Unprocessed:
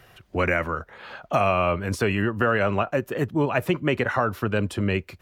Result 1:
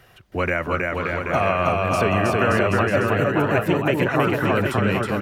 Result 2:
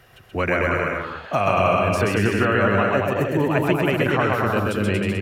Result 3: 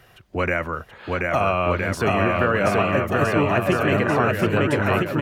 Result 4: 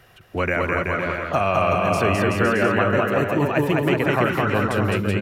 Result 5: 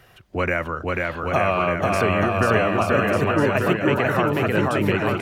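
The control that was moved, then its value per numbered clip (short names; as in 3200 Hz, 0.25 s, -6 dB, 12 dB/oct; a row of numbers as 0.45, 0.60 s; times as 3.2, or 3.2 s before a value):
bouncing-ball echo, first gap: 0.32, 0.13, 0.73, 0.21, 0.49 s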